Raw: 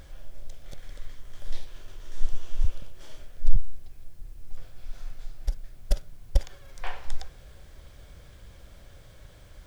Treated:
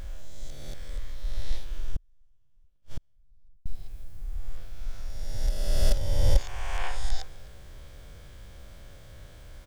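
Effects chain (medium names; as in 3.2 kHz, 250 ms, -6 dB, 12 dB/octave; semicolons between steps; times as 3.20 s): reverse spectral sustain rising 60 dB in 1.94 s; feedback delay 255 ms, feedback 17%, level -22.5 dB; 1.96–3.66 s: inverted gate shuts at -19 dBFS, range -41 dB; trim -1.5 dB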